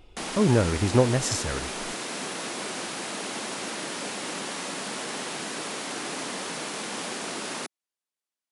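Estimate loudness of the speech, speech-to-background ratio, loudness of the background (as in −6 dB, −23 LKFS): −24.5 LKFS, 7.5 dB, −32.0 LKFS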